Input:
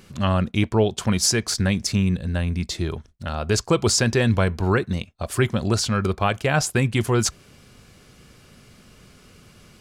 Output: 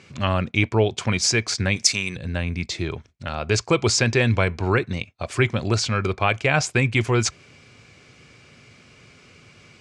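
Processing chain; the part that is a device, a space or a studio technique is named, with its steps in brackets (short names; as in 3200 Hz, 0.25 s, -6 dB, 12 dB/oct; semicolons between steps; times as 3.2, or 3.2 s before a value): 1.76–2.16 RIAA curve recording; car door speaker (speaker cabinet 91–7600 Hz, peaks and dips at 110 Hz +3 dB, 200 Hz -6 dB, 2300 Hz +9 dB)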